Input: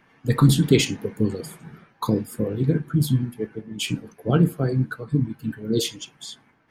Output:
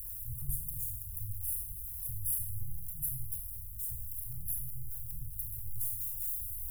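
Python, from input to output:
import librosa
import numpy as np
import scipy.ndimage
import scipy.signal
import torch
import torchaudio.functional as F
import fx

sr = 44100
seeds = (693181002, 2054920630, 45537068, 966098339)

p1 = x + 0.5 * 10.0 ** (-21.0 / 20.0) * np.sign(x)
p2 = fx.rider(p1, sr, range_db=10, speed_s=2.0)
p3 = p1 + (p2 * 10.0 ** (-1.0 / 20.0))
p4 = scipy.signal.sosfilt(scipy.signal.cheby2(4, 50, [180.0, 5500.0], 'bandstop', fs=sr, output='sos'), p3)
p5 = fx.rev_schroeder(p4, sr, rt60_s=0.62, comb_ms=26, drr_db=3.0)
y = p5 * 10.0 ** (-8.0 / 20.0)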